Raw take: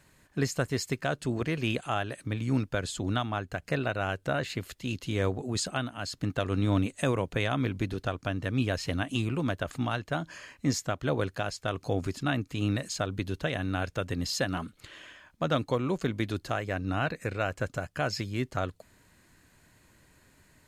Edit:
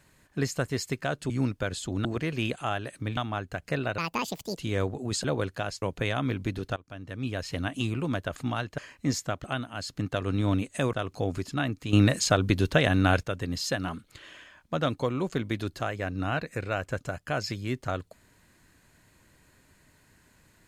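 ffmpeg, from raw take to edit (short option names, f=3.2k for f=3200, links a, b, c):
-filter_complex "[0:a]asplit=14[a][b][c][d][e][f][g][h][i][j][k][l][m][n];[a]atrim=end=1.302[o];[b]atrim=start=2.418:end=3.172[p];[c]atrim=start=1.298:end=2.422[q];[d]atrim=start=3.168:end=3.984[r];[e]atrim=start=3.98:end=5.02,asetpts=PTS-STARTPTS,asetrate=76293,aresample=44100[s];[f]atrim=start=5.016:end=5.682[t];[g]atrim=start=11.038:end=11.622[u];[h]atrim=start=7.168:end=8.11,asetpts=PTS-STARTPTS,afade=t=out:st=0.938:d=0.004:c=hsin:silence=0.11885[v];[i]atrim=start=8.11:end=10.132,asetpts=PTS-STARTPTS,afade=t=in:d=0.94:silence=0.11885[w];[j]atrim=start=10.378:end=11.042[x];[k]atrim=start=5.678:end=7.172[y];[l]atrim=start=11.618:end=12.622[z];[m]atrim=start=12.618:end=13.922,asetpts=PTS-STARTPTS,volume=8.5dB[aa];[n]atrim=start=13.918[ab];[o][p]acrossfade=d=0.004:c1=hsin:c2=hsin[ac];[ac][q]acrossfade=d=0.004:c1=hsin:c2=hsin[ad];[ad][r]acrossfade=d=0.004:c1=hsin:c2=hsin[ae];[ae][s]acrossfade=d=0.004:c1=hsin:c2=hsin[af];[af][t]acrossfade=d=0.004:c1=hsin:c2=hsin[ag];[ag][u]acrossfade=d=0.004:c1=hsin:c2=hsin[ah];[v][w]concat=n=2:v=0:a=1[ai];[ah][ai]acrossfade=d=0.004:c1=hsin:c2=hsin[aj];[aj][x]acrossfade=d=0.004:c1=hsin:c2=hsin[ak];[ak][y]acrossfade=d=0.004:c1=hsin:c2=hsin[al];[al][z]acrossfade=d=0.004:c1=hsin:c2=hsin[am];[am][aa]acrossfade=d=0.004:c1=hsin:c2=hsin[an];[an][ab]acrossfade=d=0.004:c1=hsin:c2=hsin"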